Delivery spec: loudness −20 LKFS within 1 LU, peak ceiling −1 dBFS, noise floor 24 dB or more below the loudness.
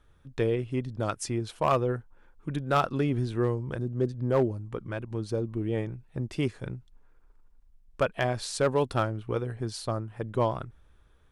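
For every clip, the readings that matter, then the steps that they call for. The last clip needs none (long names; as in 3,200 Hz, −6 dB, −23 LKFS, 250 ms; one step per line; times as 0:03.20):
share of clipped samples 0.3%; peaks flattened at −16.5 dBFS; integrated loudness −30.0 LKFS; sample peak −16.5 dBFS; target loudness −20.0 LKFS
→ clipped peaks rebuilt −16.5 dBFS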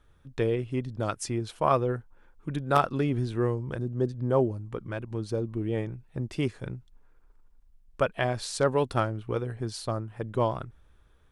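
share of clipped samples 0.0%; integrated loudness −29.5 LKFS; sample peak −7.5 dBFS; target loudness −20.0 LKFS
→ level +9.5 dB
brickwall limiter −1 dBFS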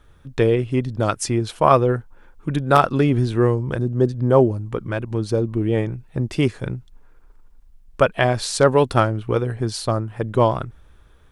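integrated loudness −20.5 LKFS; sample peak −1.0 dBFS; background noise floor −50 dBFS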